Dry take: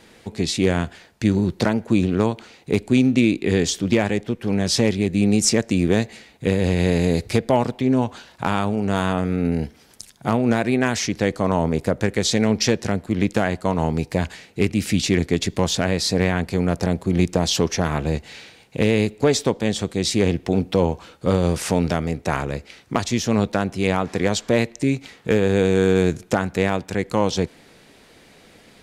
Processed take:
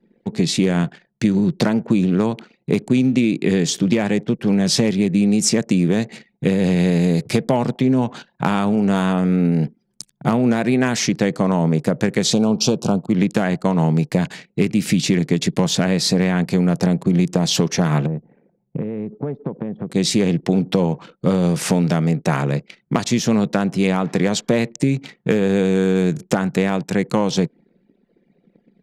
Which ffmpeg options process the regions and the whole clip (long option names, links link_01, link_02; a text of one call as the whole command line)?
ffmpeg -i in.wav -filter_complex "[0:a]asettb=1/sr,asplit=3[link_01][link_02][link_03];[link_01]atrim=end=12.334[link_04];[link_02]atrim=start=12.33:end=13.1,asetpts=PTS-STARTPTS,afade=type=in:duration=0.004:curve=qsin,afade=type=out:start_time=0.766:duration=0.004:curve=qsin,asuperstop=centerf=1900:order=4:qfactor=1.2,equalizer=frequency=1000:width=1.1:gain=4[link_05];[link_03]atrim=start=13.096[link_06];[link_04][link_05]acrossfade=duration=0.004:curve1=hsin:curve2=qsin[link_07];[link_07][link_06]acrossfade=duration=0.004:curve1=qsin:curve2=hsin,asettb=1/sr,asplit=3[link_08][link_09][link_10];[link_08]atrim=end=18.064[link_11];[link_09]atrim=start=18.06:end=19.9,asetpts=PTS-STARTPTS,afade=type=in:duration=0.004:curve=qsin,afade=type=out:start_time=1.836:duration=0.004:curve=qsin,acompressor=threshold=-27dB:ratio=6:attack=3.2:release=140:knee=1:detection=peak,lowpass=1100[link_12];[link_10]atrim=start=19.896[link_13];[link_11][link_12]acrossfade=duration=0.004:curve1=hsin:curve2=qsin[link_14];[link_14][link_13]acrossfade=duration=0.004:curve1=qsin:curve2=hsin,anlmdn=0.251,lowshelf=frequency=100:width_type=q:width=3:gain=-14,acompressor=threshold=-17dB:ratio=6,volume=4dB" out.wav